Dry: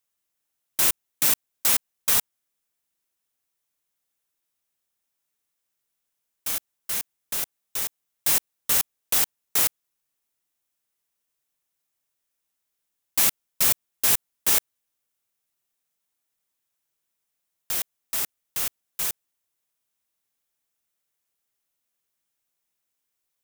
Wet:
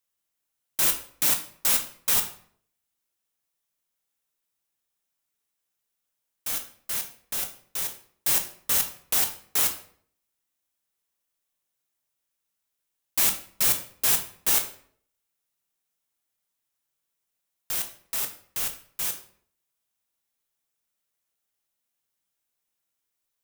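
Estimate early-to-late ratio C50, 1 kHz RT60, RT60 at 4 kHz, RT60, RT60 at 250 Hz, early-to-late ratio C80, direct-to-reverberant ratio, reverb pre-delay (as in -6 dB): 10.5 dB, 0.55 s, 0.40 s, 0.60 s, 0.65 s, 14.0 dB, 5.0 dB, 9 ms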